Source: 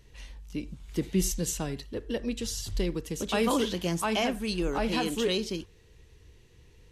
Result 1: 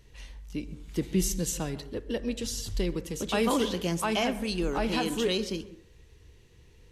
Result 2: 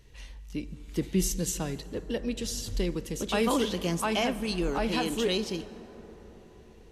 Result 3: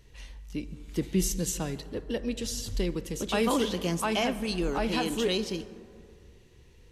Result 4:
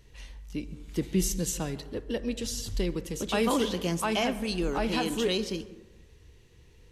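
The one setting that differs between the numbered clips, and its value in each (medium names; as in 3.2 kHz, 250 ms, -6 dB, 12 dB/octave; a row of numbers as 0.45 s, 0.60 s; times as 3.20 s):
plate-style reverb, RT60: 0.51 s, 5.2 s, 2.3 s, 1.1 s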